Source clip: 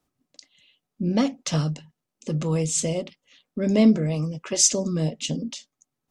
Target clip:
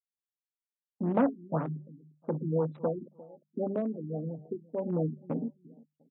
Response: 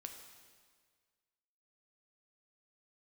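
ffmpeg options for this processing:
-filter_complex "[0:a]afwtdn=0.0316,asettb=1/sr,asplit=3[s0][s1][s2];[s0]atrim=end=2.874[s3];[s1]atrim=start=2.87:end=4.9,asetpts=PTS-STARTPTS,afade=t=in:d=0.004:c=qsin,afade=t=out:st=2.026:d=0.004:c=qsin,acompressor=threshold=0.0501:ratio=16[s4];[s2]atrim=start=4.896[s5];[s3][s4]acrossfade=d=0.004:c1=hsin:c2=qsin[s6];[s6][s5]acrossfade=d=0.004:c1=qsin:c2=hsin,afftfilt=real='re*gte(hypot(re,im),0.0141)':imag='im*gte(hypot(re,im),0.0141)':win_size=1024:overlap=0.75,agate=range=0.0224:threshold=0.0158:ratio=3:detection=peak,equalizer=f=820:w=0.4:g=12,asplit=2[s7][s8];[s8]adelay=350,lowpass=f=2900:p=1,volume=0.0891,asplit=2[s9][s10];[s10]adelay=350,lowpass=f=2900:p=1,volume=0.23[s11];[s7][s9][s11]amix=inputs=3:normalize=0,aeval=exprs='clip(val(0),-1,0.141)':c=same,highpass=f=120:w=0.5412,highpass=f=120:w=1.3066,equalizer=f=5700:w=1.2:g=-12,bandreject=f=50:t=h:w=6,bandreject=f=100:t=h:w=6,bandreject=f=150:t=h:w=6,bandreject=f=200:t=h:w=6,acrossover=split=3200[s12][s13];[s13]acompressor=threshold=0.00355:ratio=4:attack=1:release=60[s14];[s12][s14]amix=inputs=2:normalize=0,afftfilt=real='re*lt(b*sr/1024,380*pow(4100/380,0.5+0.5*sin(2*PI*1.9*pts/sr)))':imag='im*lt(b*sr/1024,380*pow(4100/380,0.5+0.5*sin(2*PI*1.9*pts/sr)))':win_size=1024:overlap=0.75,volume=0.398"

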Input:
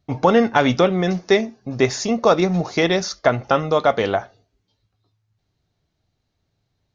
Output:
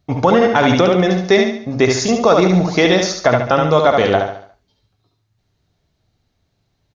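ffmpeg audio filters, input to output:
-filter_complex "[0:a]asplit=2[s0][s1];[s1]aecho=0:1:71|142|213|284|355:0.562|0.231|0.0945|0.0388|0.0159[s2];[s0][s2]amix=inputs=2:normalize=0,alimiter=level_in=1.88:limit=0.891:release=50:level=0:latency=1,volume=0.891"

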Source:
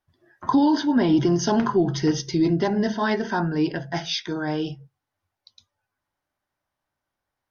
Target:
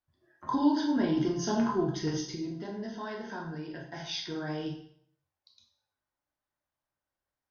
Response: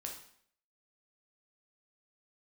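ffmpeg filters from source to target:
-filter_complex "[0:a]asettb=1/sr,asplit=3[s0][s1][s2];[s0]atrim=end=2.254[s3];[s1]atrim=start=2.25:end=4,asetpts=PTS-STARTPTS,afade=t=in:d=0.004:c=qsin,afade=t=out:st=1.746:d=0.004:c=qsin,acompressor=threshold=0.0447:ratio=6[s4];[s2]atrim=start=3.996[s5];[s3][s4]acrossfade=d=0.004:c1=hsin:c2=qsin[s6];[s6][s5]acrossfade=d=0.004:c1=qsin:c2=hsin[s7];[1:a]atrim=start_sample=2205[s8];[s7][s8]afir=irnorm=-1:irlink=0,volume=0.501"

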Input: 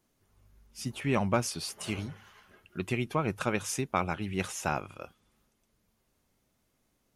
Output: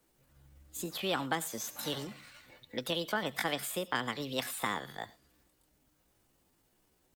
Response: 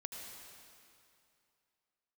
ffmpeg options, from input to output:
-filter_complex "[0:a]acrossover=split=180|410|2700[s0][s1][s2][s3];[s0]acompressor=threshold=0.00355:ratio=4[s4];[s1]acompressor=threshold=0.00794:ratio=4[s5];[s2]acompressor=threshold=0.0224:ratio=4[s6];[s3]acompressor=threshold=0.00631:ratio=4[s7];[s4][s5][s6][s7]amix=inputs=4:normalize=0,asetrate=60591,aresample=44100,atempo=0.727827,asplit=2[s8][s9];[1:a]atrim=start_sample=2205,afade=t=out:st=0.17:d=0.01,atrim=end_sample=7938,highshelf=f=3700:g=12[s10];[s9][s10]afir=irnorm=-1:irlink=0,volume=0.376[s11];[s8][s11]amix=inputs=2:normalize=0"

